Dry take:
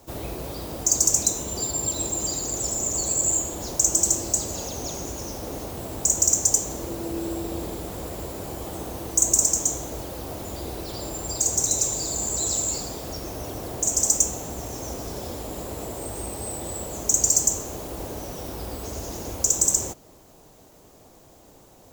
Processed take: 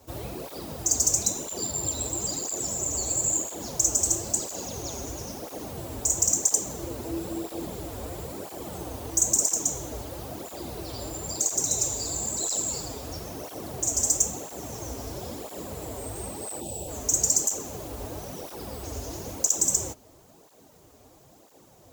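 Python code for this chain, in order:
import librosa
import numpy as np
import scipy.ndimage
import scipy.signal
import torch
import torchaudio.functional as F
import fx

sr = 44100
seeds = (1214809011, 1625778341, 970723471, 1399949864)

y = fx.spec_box(x, sr, start_s=16.61, length_s=0.28, low_hz=920.0, high_hz=2400.0, gain_db=-18)
y = fx.flanger_cancel(y, sr, hz=1.0, depth_ms=6.4)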